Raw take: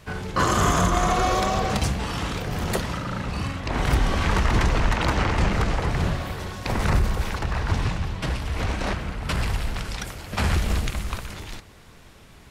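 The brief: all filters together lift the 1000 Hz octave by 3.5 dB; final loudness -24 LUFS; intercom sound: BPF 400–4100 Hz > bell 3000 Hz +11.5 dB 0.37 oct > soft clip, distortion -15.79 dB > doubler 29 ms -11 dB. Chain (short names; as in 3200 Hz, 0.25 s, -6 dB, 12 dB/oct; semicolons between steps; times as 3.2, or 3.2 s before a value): BPF 400–4100 Hz; bell 1000 Hz +4.5 dB; bell 3000 Hz +11.5 dB 0.37 oct; soft clip -16 dBFS; doubler 29 ms -11 dB; gain +2.5 dB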